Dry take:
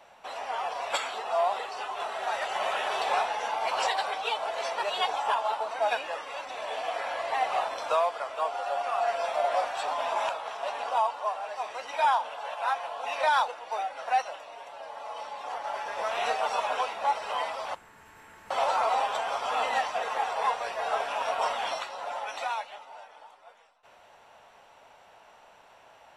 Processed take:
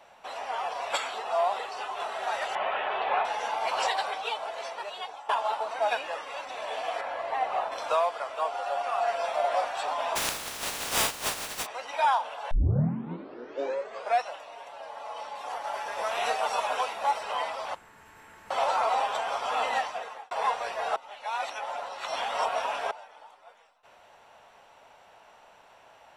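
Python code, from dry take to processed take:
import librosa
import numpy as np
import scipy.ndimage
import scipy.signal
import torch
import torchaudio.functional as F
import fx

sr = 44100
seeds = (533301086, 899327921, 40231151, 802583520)

y = fx.lowpass(x, sr, hz=3000.0, slope=24, at=(2.55, 3.25))
y = fx.high_shelf(y, sr, hz=2600.0, db=-10.5, at=(7.01, 7.72))
y = fx.spec_flatten(y, sr, power=0.19, at=(10.15, 11.65), fade=0.02)
y = fx.high_shelf(y, sr, hz=9700.0, db=11.5, at=(15.35, 17.23))
y = fx.edit(y, sr, fx.fade_out_to(start_s=3.97, length_s=1.32, floor_db=-16.0),
    fx.tape_start(start_s=12.51, length_s=1.77),
    fx.fade_out_span(start_s=19.73, length_s=0.58),
    fx.reverse_span(start_s=20.96, length_s=1.95), tone=tone)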